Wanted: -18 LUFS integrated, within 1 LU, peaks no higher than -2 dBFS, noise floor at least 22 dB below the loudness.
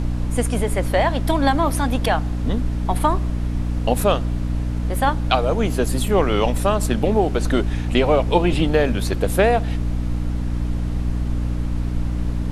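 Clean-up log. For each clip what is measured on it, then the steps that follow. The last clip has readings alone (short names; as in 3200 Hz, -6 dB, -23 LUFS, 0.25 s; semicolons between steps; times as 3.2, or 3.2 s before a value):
hum 60 Hz; harmonics up to 300 Hz; hum level -20 dBFS; noise floor -24 dBFS; noise floor target -43 dBFS; loudness -21.0 LUFS; peak -2.0 dBFS; loudness target -18.0 LUFS
-> notches 60/120/180/240/300 Hz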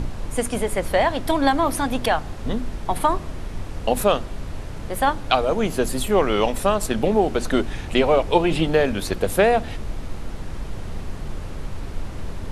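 hum none; noise floor -33 dBFS; noise floor target -44 dBFS
-> noise print and reduce 11 dB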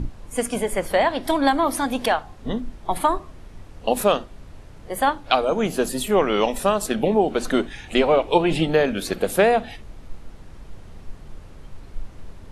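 noise floor -43 dBFS; noise floor target -44 dBFS
-> noise print and reduce 6 dB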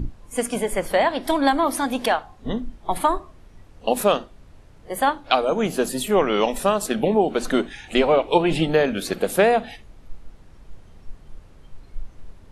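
noise floor -48 dBFS; loudness -22.0 LUFS; peak -2.5 dBFS; loudness target -18.0 LUFS
-> gain +4 dB; limiter -2 dBFS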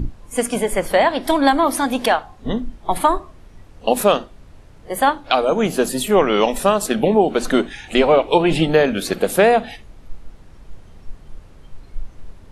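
loudness -18.0 LUFS; peak -2.0 dBFS; noise floor -44 dBFS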